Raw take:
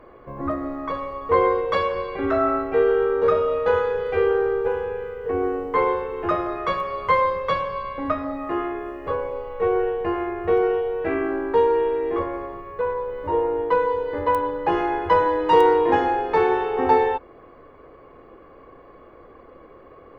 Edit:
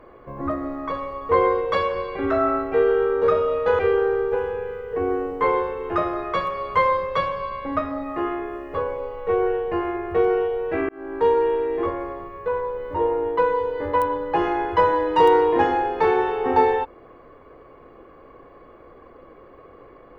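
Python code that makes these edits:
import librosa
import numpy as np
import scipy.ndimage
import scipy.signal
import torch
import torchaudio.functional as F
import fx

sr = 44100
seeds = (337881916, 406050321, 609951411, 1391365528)

y = fx.edit(x, sr, fx.cut(start_s=3.79, length_s=0.33),
    fx.fade_in_span(start_s=11.22, length_s=0.39), tone=tone)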